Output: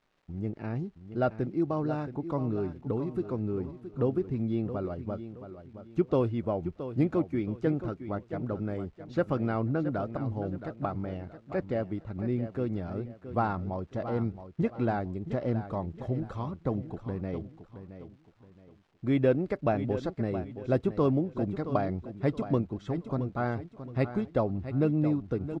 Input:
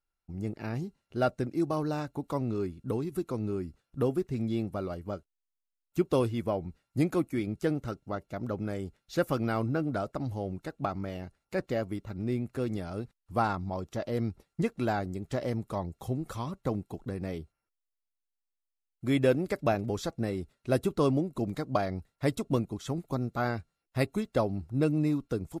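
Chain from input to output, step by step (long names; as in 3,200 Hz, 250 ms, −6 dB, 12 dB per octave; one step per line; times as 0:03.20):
surface crackle 590 per second −53 dBFS
head-to-tape spacing loss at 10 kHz 28 dB
repeating echo 671 ms, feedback 32%, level −11.5 dB
level +1.5 dB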